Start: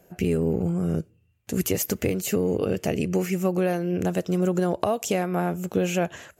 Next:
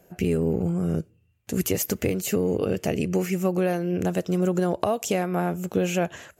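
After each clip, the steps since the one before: no audible change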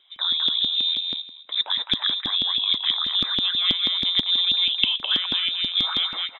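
frequency inversion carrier 3.8 kHz; feedback delay 210 ms, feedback 19%, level -3.5 dB; LFO high-pass saw up 6.2 Hz 240–2600 Hz; trim -2 dB

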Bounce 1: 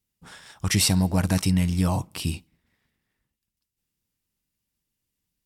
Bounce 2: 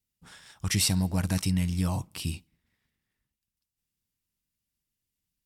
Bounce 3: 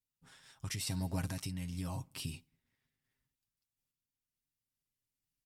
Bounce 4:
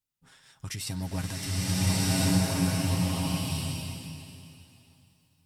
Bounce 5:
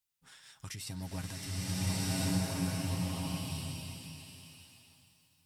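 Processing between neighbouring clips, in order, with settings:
peaking EQ 580 Hz -4.5 dB 2.8 oct; trim -3.5 dB
comb 7.5 ms, depth 59%; compression 6:1, threshold -28 dBFS, peak gain reduction 8.5 dB; random-step tremolo 2.3 Hz, depth 55%; trim -4 dB
swelling reverb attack 1390 ms, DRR -10.5 dB; trim +3 dB
tape noise reduction on one side only encoder only; trim -7.5 dB

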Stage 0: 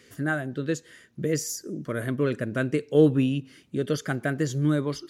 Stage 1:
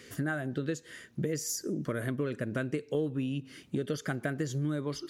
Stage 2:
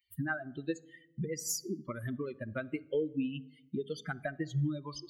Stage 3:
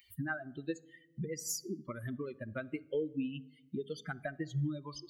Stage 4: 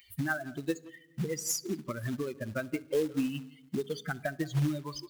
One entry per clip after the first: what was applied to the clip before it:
compression 6:1, threshold -33 dBFS, peak gain reduction 18.5 dB; trim +3.5 dB
expander on every frequency bin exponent 3; on a send at -20.5 dB: reverberation RT60 0.90 s, pre-delay 25 ms; on the sum: trim +3.5 dB
upward compressor, threshold -50 dBFS; trim -2.5 dB
short-mantissa float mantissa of 2-bit; speakerphone echo 170 ms, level -18 dB; trim +5.5 dB

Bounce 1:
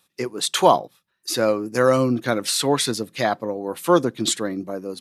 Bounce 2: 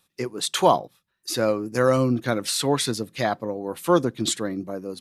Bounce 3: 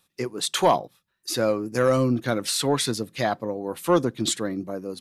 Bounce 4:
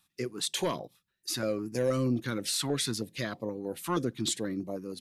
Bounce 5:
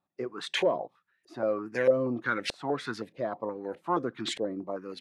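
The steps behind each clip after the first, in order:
bass shelf 96 Hz +11.5 dB; trim -3 dB
saturation -8 dBFS, distortion -21 dB
in parallel at -2.5 dB: peak limiter -19.5 dBFS, peak gain reduction 10.5 dB; on the sum: step-sequenced notch 6.3 Hz 480–1500 Hz; trim -8.5 dB
RIAA curve recording; LFO low-pass saw up 1.6 Hz 540–2300 Hz; trim +3 dB

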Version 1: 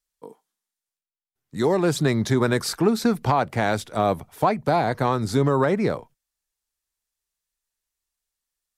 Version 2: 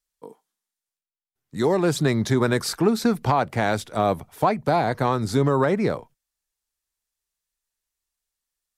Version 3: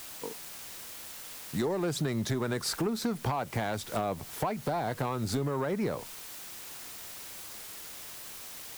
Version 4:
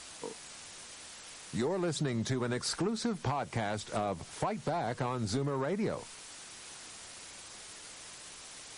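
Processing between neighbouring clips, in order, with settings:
no audible change
in parallel at -6 dB: word length cut 6-bit, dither triangular; on the sum: compression 12:1, threshold -23 dBFS, peak gain reduction 13 dB; saturation -19.5 dBFS, distortion -17 dB; trim -2 dB
trim -1.5 dB; MP3 40 kbps 32 kHz

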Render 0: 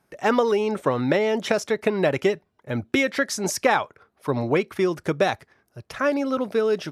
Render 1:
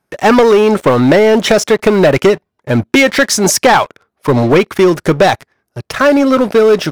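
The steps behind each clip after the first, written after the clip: waveshaping leveller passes 3; trim +4.5 dB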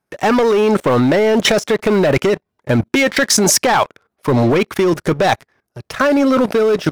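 level held to a coarse grid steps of 16 dB; trim +3.5 dB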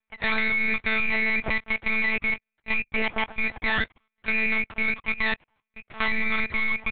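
frequency inversion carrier 2.6 kHz; half-wave rectifier; monotone LPC vocoder at 8 kHz 220 Hz; trim -7.5 dB

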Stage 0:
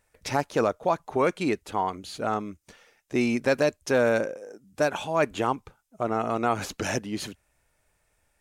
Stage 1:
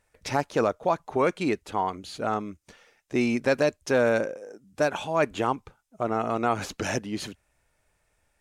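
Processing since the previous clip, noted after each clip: treble shelf 12 kHz -8 dB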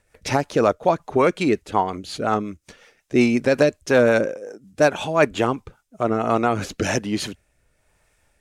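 rotary cabinet horn 5.5 Hz, later 1 Hz, at 5.64 s; trim +8.5 dB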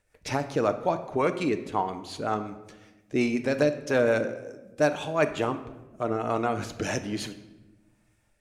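simulated room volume 600 m³, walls mixed, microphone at 0.47 m; trim -7.5 dB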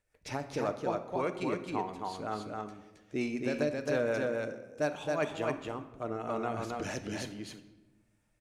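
delay 269 ms -3 dB; trim -8.5 dB

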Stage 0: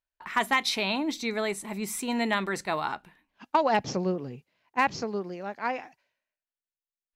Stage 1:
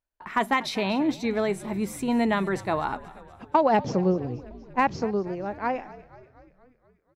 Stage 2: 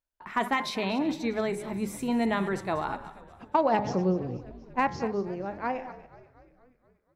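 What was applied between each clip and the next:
tilt shelf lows +6 dB, about 1.4 kHz; frequency-shifting echo 240 ms, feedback 62%, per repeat -66 Hz, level -18.5 dB
chunks repeated in reverse 141 ms, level -13.5 dB; de-hum 104.4 Hz, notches 22; trim -3 dB

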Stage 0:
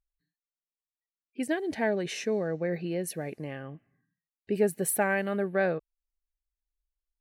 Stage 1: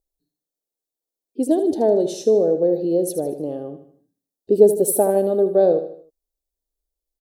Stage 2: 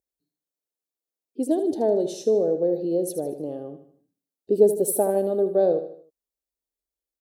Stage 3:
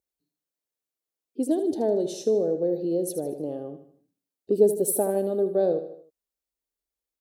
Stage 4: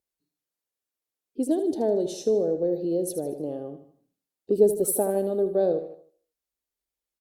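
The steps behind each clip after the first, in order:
FFT filter 180 Hz 0 dB, 280 Hz +10 dB, 490 Hz +13 dB, 750 Hz +6 dB, 2.2 kHz -27 dB, 3.5 kHz +1 dB, 6.5 kHz +4 dB, 13 kHz +7 dB; on a send: feedback delay 77 ms, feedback 42%, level -10.5 dB; on the sum: trim +1.5 dB
high-pass 73 Hz 12 dB/octave; trim -4.5 dB
dynamic bell 700 Hz, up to -4 dB, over -29 dBFS, Q 0.88
speakerphone echo 230 ms, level -29 dB; Opus 64 kbps 48 kHz

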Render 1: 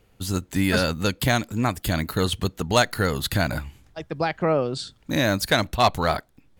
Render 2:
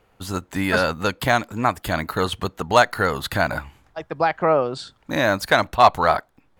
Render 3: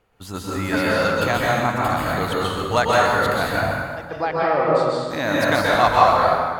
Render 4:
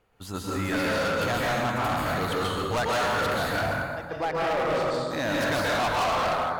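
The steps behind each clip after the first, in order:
peaking EQ 1 kHz +12 dB 2.4 oct; trim -4.5 dB
plate-style reverb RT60 1.7 s, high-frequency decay 0.7×, pre-delay 115 ms, DRR -5.5 dB; trim -5 dB
overload inside the chain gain 20 dB; trim -3 dB

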